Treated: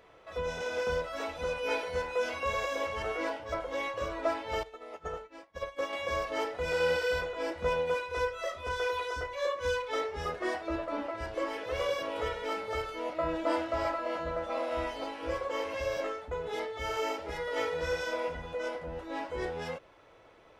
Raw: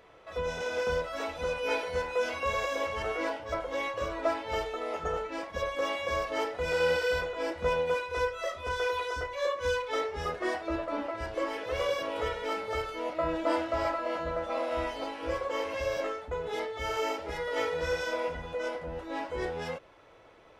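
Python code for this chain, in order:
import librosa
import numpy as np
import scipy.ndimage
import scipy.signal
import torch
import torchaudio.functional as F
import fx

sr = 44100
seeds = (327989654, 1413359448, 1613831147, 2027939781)

y = fx.upward_expand(x, sr, threshold_db=-44.0, expansion=2.5, at=(4.63, 5.93))
y = y * 10.0 ** (-1.5 / 20.0)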